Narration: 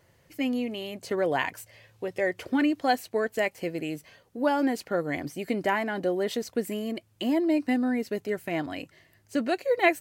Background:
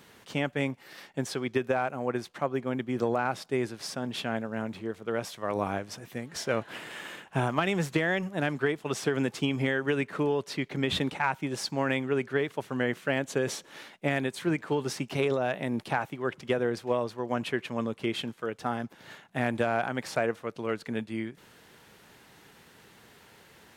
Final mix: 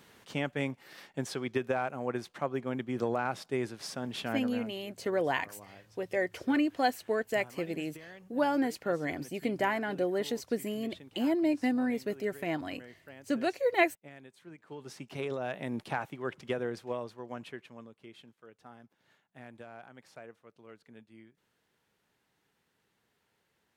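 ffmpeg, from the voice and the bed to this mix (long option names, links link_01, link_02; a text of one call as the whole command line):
ffmpeg -i stem1.wav -i stem2.wav -filter_complex "[0:a]adelay=3950,volume=-3.5dB[link_01];[1:a]volume=14dB,afade=type=out:start_time=4.38:duration=0.41:silence=0.112202,afade=type=in:start_time=14.58:duration=1.11:silence=0.133352,afade=type=out:start_time=16.4:duration=1.53:silence=0.158489[link_02];[link_01][link_02]amix=inputs=2:normalize=0" out.wav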